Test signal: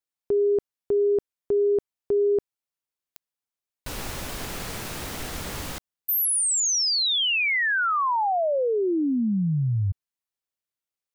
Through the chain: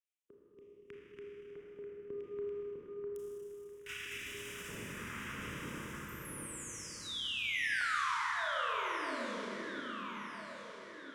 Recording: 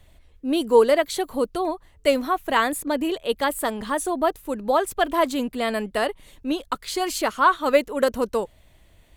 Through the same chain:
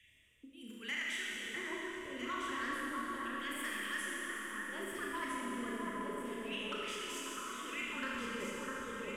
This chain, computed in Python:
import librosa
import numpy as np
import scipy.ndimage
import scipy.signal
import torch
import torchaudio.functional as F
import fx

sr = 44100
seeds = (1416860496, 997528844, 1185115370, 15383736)

y = fx.phaser_stages(x, sr, stages=2, low_hz=480.0, high_hz=2200.0, hz=0.72, feedback_pct=25)
y = fx.low_shelf(y, sr, hz=190.0, db=10.5)
y = fx.over_compress(y, sr, threshold_db=-27.0, ratio=-0.5)
y = fx.fixed_phaser(y, sr, hz=1800.0, stages=4)
y = fx.filter_lfo_bandpass(y, sr, shape='square', hz=0.32, low_hz=900.0, high_hz=2700.0, q=1.6)
y = 10.0 ** (-30.5 / 20.0) * np.tanh(y / 10.0 ** (-30.5 / 20.0))
y = fx.echo_alternate(y, sr, ms=652, hz=1800.0, feedback_pct=53, wet_db=-2.5)
y = fx.noise_reduce_blind(y, sr, reduce_db=7)
y = fx.rev_schroeder(y, sr, rt60_s=2.9, comb_ms=26, drr_db=-4.5)
y = fx.band_squash(y, sr, depth_pct=40)
y = y * 10.0 ** (-3.5 / 20.0)